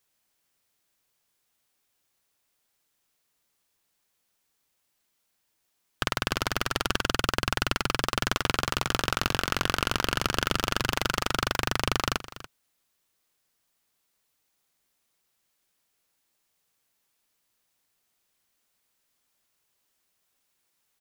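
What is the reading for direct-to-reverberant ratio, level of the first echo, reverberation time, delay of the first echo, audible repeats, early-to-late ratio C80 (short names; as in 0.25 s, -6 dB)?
none, -16.0 dB, none, 0.286 s, 1, none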